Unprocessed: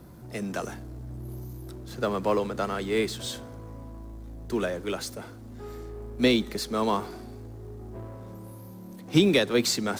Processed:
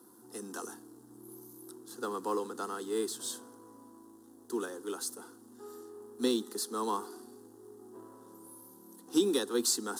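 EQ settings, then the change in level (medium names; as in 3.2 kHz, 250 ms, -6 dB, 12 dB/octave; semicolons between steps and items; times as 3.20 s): high-pass 170 Hz 24 dB/octave; peaking EQ 10 kHz +11.5 dB 0.85 oct; static phaser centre 610 Hz, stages 6; -5.0 dB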